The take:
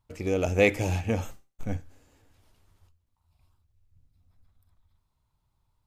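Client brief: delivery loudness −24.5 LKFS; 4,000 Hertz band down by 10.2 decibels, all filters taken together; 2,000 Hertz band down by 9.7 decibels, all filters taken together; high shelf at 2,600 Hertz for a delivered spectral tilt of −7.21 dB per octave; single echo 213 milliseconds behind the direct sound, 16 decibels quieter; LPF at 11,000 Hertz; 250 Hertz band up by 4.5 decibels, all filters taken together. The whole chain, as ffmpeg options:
ffmpeg -i in.wav -af "lowpass=11000,equalizer=frequency=250:width_type=o:gain=6,equalizer=frequency=2000:width_type=o:gain=-6.5,highshelf=frequency=2600:gain=-7,equalizer=frequency=4000:width_type=o:gain=-5,aecho=1:1:213:0.158,volume=2dB" out.wav

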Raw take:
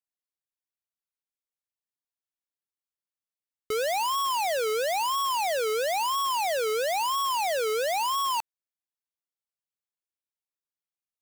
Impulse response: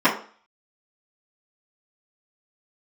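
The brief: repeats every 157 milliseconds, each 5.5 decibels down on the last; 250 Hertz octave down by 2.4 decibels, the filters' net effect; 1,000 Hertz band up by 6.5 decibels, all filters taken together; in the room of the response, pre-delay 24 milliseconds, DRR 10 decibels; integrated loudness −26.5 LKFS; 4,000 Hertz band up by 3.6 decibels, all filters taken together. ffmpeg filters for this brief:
-filter_complex "[0:a]equalizer=frequency=250:width_type=o:gain=-6,equalizer=frequency=1000:width_type=o:gain=7.5,equalizer=frequency=4000:width_type=o:gain=4.5,aecho=1:1:157|314|471|628|785|942|1099:0.531|0.281|0.149|0.079|0.0419|0.0222|0.0118,asplit=2[link_01][link_02];[1:a]atrim=start_sample=2205,adelay=24[link_03];[link_02][link_03]afir=irnorm=-1:irlink=0,volume=-31dB[link_04];[link_01][link_04]amix=inputs=2:normalize=0,volume=-7dB"

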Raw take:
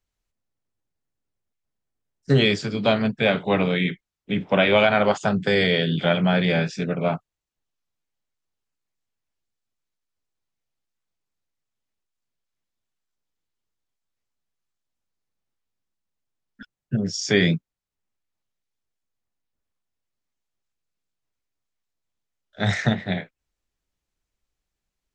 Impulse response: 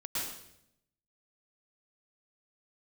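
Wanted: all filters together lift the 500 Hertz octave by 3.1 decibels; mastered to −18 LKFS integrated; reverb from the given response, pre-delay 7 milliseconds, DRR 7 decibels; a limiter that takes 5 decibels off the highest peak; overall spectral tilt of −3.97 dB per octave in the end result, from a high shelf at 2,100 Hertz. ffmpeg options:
-filter_complex "[0:a]equalizer=frequency=500:width_type=o:gain=3.5,highshelf=frequency=2100:gain=4.5,alimiter=limit=-8dB:level=0:latency=1,asplit=2[link_01][link_02];[1:a]atrim=start_sample=2205,adelay=7[link_03];[link_02][link_03]afir=irnorm=-1:irlink=0,volume=-11dB[link_04];[link_01][link_04]amix=inputs=2:normalize=0,volume=2.5dB"

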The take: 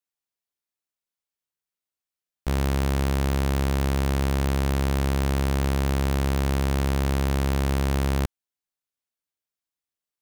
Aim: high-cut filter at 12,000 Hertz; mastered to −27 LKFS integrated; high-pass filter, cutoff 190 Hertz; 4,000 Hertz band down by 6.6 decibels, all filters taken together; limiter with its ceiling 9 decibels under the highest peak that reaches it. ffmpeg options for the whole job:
ffmpeg -i in.wav -af "highpass=190,lowpass=12000,equalizer=frequency=4000:width_type=o:gain=-9,volume=12dB,alimiter=limit=-11dB:level=0:latency=1" out.wav

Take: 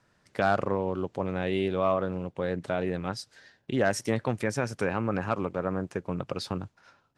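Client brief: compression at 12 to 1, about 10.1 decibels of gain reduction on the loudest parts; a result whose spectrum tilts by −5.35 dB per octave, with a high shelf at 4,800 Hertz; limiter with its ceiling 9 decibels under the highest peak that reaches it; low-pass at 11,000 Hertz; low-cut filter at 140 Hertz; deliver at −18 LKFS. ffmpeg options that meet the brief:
ffmpeg -i in.wav -af "highpass=140,lowpass=11000,highshelf=frequency=4800:gain=-8.5,acompressor=threshold=-30dB:ratio=12,volume=20.5dB,alimiter=limit=-4.5dB:level=0:latency=1" out.wav

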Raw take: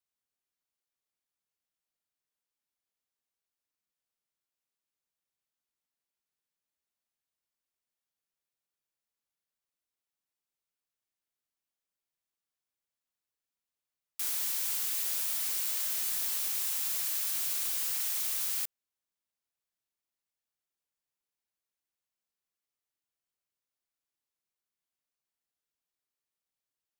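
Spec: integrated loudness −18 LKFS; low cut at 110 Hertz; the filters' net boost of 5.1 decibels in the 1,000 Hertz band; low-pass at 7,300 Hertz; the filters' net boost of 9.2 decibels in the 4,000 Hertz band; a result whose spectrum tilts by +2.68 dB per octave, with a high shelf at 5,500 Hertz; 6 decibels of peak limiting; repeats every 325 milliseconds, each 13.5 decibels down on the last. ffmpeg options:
ffmpeg -i in.wav -af "highpass=110,lowpass=7300,equalizer=frequency=1000:width_type=o:gain=5.5,equalizer=frequency=4000:width_type=o:gain=8,highshelf=frequency=5500:gain=8.5,alimiter=level_in=1.5dB:limit=-24dB:level=0:latency=1,volume=-1.5dB,aecho=1:1:325|650:0.211|0.0444,volume=14.5dB" out.wav

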